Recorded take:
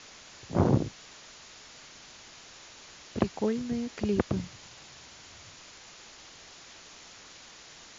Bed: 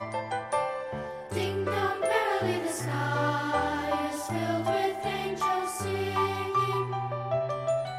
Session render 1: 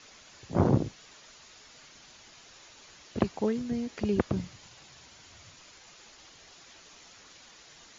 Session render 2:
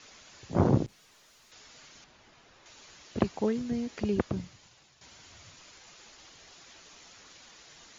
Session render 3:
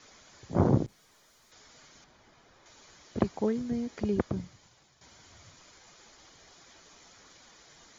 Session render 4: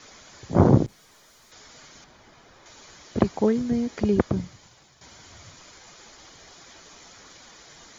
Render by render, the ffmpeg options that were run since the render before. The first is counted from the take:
-af "afftdn=nr=6:nf=-51"
-filter_complex "[0:a]asettb=1/sr,asplit=3[s0][s1][s2];[s0]atrim=end=0.864[s3];[s1]atrim=start=0.86:end=1.52,asetpts=PTS-STARTPTS,afade=t=in:d=0.004:c=qsin,afade=t=out:st=0.656:d=0.004:c=qsin,aeval=exprs='(tanh(794*val(0)+0.2)-tanh(0.2))/794':c=same[s4];[s2]atrim=start=1.516[s5];[s3][s4]acrossfade=d=0.004:c1=hsin:c2=qsin[s6];[s6][s5]acrossfade=d=0.004:c1=qsin:c2=hsin,asettb=1/sr,asplit=3[s7][s8][s9];[s7]atrim=end=2.044[s10];[s8]atrim=start=2.04:end=2.66,asetpts=PTS-STARTPTS,afade=t=in:d=0.004:c=qsin,afade=t=out:st=0.616:d=0.004:c=qsin,lowpass=f=1600:p=1[s11];[s9]atrim=start=2.656[s12];[s10][s11]acrossfade=d=0.004:c1=hsin:c2=qsin[s13];[s13][s12]acrossfade=d=0.004:c1=qsin:c2=hsin,asplit=2[s14][s15];[s14]atrim=end=5.01,asetpts=PTS-STARTPTS,afade=t=out:st=3.94:d=1.07:silence=0.281838[s16];[s15]atrim=start=5.01,asetpts=PTS-STARTPTS,afade=t=in:d=0.004:c=hsin:silence=0.281838[s17];[s16][s17]concat=n=2:v=0:a=1"
-af "equalizer=f=3600:t=o:w=2.2:g=-4,bandreject=f=2700:w=9.8"
-af "volume=2.37,alimiter=limit=0.794:level=0:latency=1"

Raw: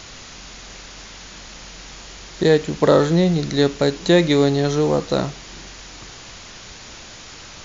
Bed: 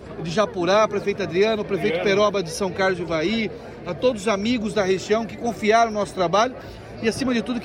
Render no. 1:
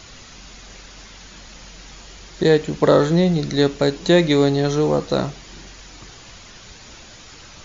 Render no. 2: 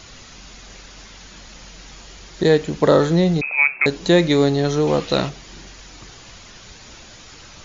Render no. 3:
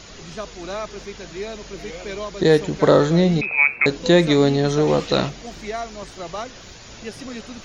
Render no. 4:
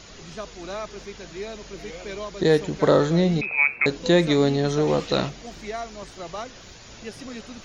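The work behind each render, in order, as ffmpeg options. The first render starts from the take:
-af "afftdn=nr=6:nf=-40"
-filter_complex "[0:a]asettb=1/sr,asplit=3[s0][s1][s2];[s0]atrim=end=3.414[s3];[s1]atrim=start=3.41:end=3.86,asetpts=PTS-STARTPTS,afade=t=in:d=0.004:c=qsin,afade=t=out:st=0.446:d=0.004:c=qsin,lowpass=f=2300:t=q:w=0.5098,lowpass=f=2300:t=q:w=0.6013,lowpass=f=2300:t=q:w=0.9,lowpass=f=2300:t=q:w=2.563,afreqshift=-2700[s4];[s2]atrim=start=3.856[s5];[s3][s4]acrossfade=d=0.004:c1=hsin:c2=qsin[s6];[s6][s5]acrossfade=d=0.004:c1=qsin:c2=hsin,asettb=1/sr,asplit=3[s7][s8][s9];[s7]atrim=end=4.874[s10];[s8]atrim=start=4.87:end=5.29,asetpts=PTS-STARTPTS,afade=t=in:d=0.004:c=qsin,afade=t=out:st=0.416:d=0.004:c=qsin,equalizer=f=2800:t=o:w=1.2:g=10.5[s11];[s9]atrim=start=5.286[s12];[s10][s11]acrossfade=d=0.004:c1=hsin:c2=qsin[s13];[s13][s12]acrossfade=d=0.004:c1=qsin:c2=hsin"
-filter_complex "[1:a]volume=0.251[s0];[0:a][s0]amix=inputs=2:normalize=0"
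-af "volume=0.668"

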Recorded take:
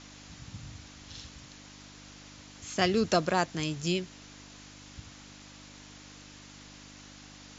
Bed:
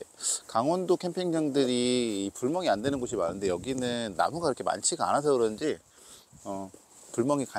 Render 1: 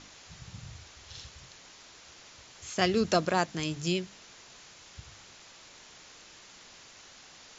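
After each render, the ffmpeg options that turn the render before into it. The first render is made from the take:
-af "bandreject=f=50:t=h:w=4,bandreject=f=100:t=h:w=4,bandreject=f=150:t=h:w=4,bandreject=f=200:t=h:w=4,bandreject=f=250:t=h:w=4,bandreject=f=300:t=h:w=4"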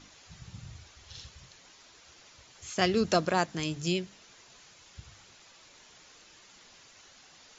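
-af "afftdn=nr=6:nf=-53"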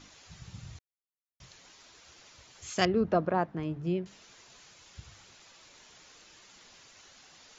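-filter_complex "[0:a]asettb=1/sr,asplit=3[s0][s1][s2];[s0]atrim=end=2.854[s3];[s1]atrim=start=2.85:end=4.06,asetpts=PTS-STARTPTS,afade=t=in:d=0.004:c=qsin,afade=t=out:st=1.206:d=0.004:c=qsin,lowpass=1200[s4];[s2]atrim=start=4.056[s5];[s3][s4]acrossfade=d=0.004:c1=hsin:c2=qsin[s6];[s6][s5]acrossfade=d=0.004:c1=qsin:c2=hsin,asplit=3[s7][s8][s9];[s7]atrim=end=0.79,asetpts=PTS-STARTPTS,afade=t=out:st=0.786:d=0.004:c=hsin[s10];[s8]atrim=start=0.79:end=1.4,asetpts=PTS-STARTPTS,volume=0[s11];[s9]atrim=start=1.4,asetpts=PTS-STARTPTS,afade=t=in:d=0.004:c=hsin[s12];[s10][s11][s12]concat=n=3:v=0:a=1"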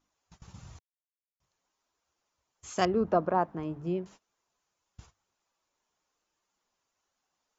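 -af "agate=range=0.0631:threshold=0.00398:ratio=16:detection=peak,equalizer=f=125:t=o:w=1:g=-5,equalizer=f=1000:t=o:w=1:g=5,equalizer=f=2000:t=o:w=1:g=-5,equalizer=f=4000:t=o:w=1:g=-6"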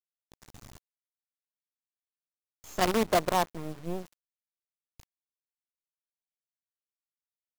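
-af "acrusher=bits=5:dc=4:mix=0:aa=0.000001"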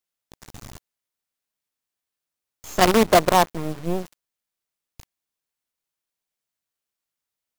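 -af "volume=2.99"

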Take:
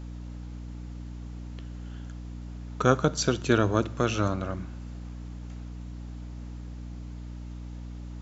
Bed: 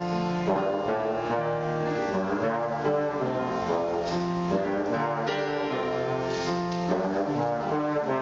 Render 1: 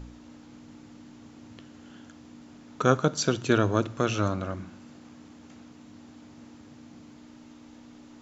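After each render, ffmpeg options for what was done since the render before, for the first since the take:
-af "bandreject=f=60:t=h:w=4,bandreject=f=120:t=h:w=4,bandreject=f=180:t=h:w=4"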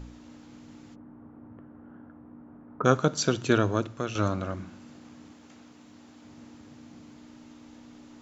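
-filter_complex "[0:a]asplit=3[s0][s1][s2];[s0]afade=t=out:st=0.94:d=0.02[s3];[s1]lowpass=f=1400:w=0.5412,lowpass=f=1400:w=1.3066,afade=t=in:st=0.94:d=0.02,afade=t=out:st=2.84:d=0.02[s4];[s2]afade=t=in:st=2.84:d=0.02[s5];[s3][s4][s5]amix=inputs=3:normalize=0,asettb=1/sr,asplit=3[s6][s7][s8];[s6]atrim=end=5.334[s9];[s7]atrim=start=5.33:end=6.25,asetpts=PTS-STARTPTS,afade=t=in:d=0.004:c=qsin,afade=t=out:st=0.916:d=0.004:c=qsin,lowshelf=f=230:g=-7[s10];[s8]atrim=start=6.246[s11];[s9][s10]acrossfade=d=0.004:c1=hsin:c2=qsin[s12];[s12][s11]acrossfade=d=0.004:c1=qsin:c2=hsin,asplit=2[s13][s14];[s13]atrim=end=4.15,asetpts=PTS-STARTPTS,afade=t=out:st=3.53:d=0.62:silence=0.398107[s15];[s14]atrim=start=4.15,asetpts=PTS-STARTPTS,afade=t=in:d=0.004:c=hsin:silence=0.398107[s16];[s15][s16]concat=n=2:v=0:a=1"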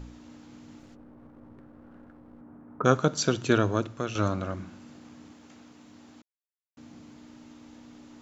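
-filter_complex "[0:a]asettb=1/sr,asplit=3[s0][s1][s2];[s0]atrim=end=0.794[s3];[s1]atrim=start=0.79:end=2.41,asetpts=PTS-STARTPTS,afade=t=in:d=0.004:c=qsin,afade=t=out:st=1.616:d=0.004:c=qsin,aeval=exprs='clip(val(0),-1,0.00211)':c=same[s4];[s2]atrim=start=2.406[s5];[s3][s4]acrossfade=d=0.004:c1=hsin:c2=qsin[s6];[s6][s5]acrossfade=d=0.004:c1=qsin:c2=hsin,asplit=3[s7][s8][s9];[s7]atrim=end=6.22,asetpts=PTS-STARTPTS,afade=t=out:st=6.216:d=0.004:c=hsin[s10];[s8]atrim=start=6.22:end=6.77,asetpts=PTS-STARTPTS,volume=0[s11];[s9]atrim=start=6.77,asetpts=PTS-STARTPTS,afade=t=in:d=0.004:c=hsin[s12];[s10][s11][s12]concat=n=3:v=0:a=1"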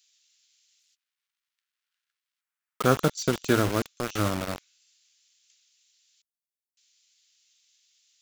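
-filter_complex "[0:a]acrossover=split=3100[s0][s1];[s0]acrusher=bits=4:mix=0:aa=0.000001[s2];[s1]asoftclip=type=tanh:threshold=0.0376[s3];[s2][s3]amix=inputs=2:normalize=0"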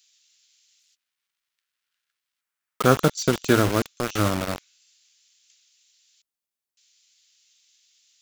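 -af "volume=1.58"

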